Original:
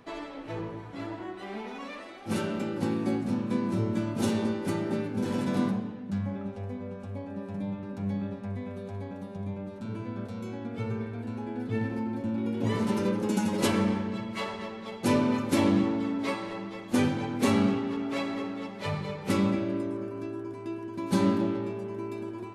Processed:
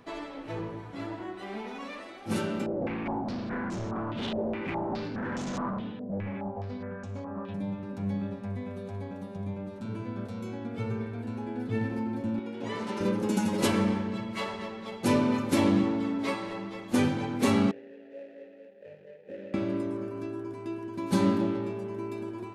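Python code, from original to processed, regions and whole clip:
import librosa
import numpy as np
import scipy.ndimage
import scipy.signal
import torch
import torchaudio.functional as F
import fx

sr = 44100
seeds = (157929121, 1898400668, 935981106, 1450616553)

y = fx.chain(x, sr, fx.clip_hard(threshold_db=-32.0),
    fx.filter_held_lowpass(hz=4.8, low_hz=590.0, high_hz=6700.0), at=(2.66, 7.54))
y = fx.chain(y, sr, fx.highpass(hz=540.0, slope=6),
    fx.air_absorb(metres=59.0),
    fx.notch(hz=1100.0, q=26.0), at=(12.39, 13.01))
y = fx.chain(y, sr, fx.median_filter(points=41),
    fx.vowel_filter(vowel='e'), at=(17.71, 19.54))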